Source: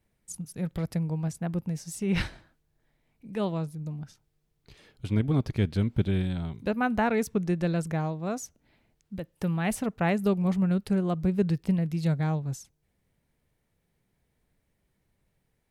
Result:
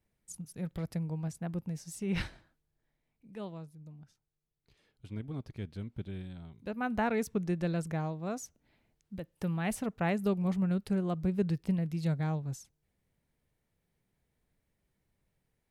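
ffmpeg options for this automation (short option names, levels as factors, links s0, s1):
-af "volume=1.5,afade=t=out:st=2.2:d=1.47:silence=0.375837,afade=t=in:st=6.55:d=0.45:silence=0.334965"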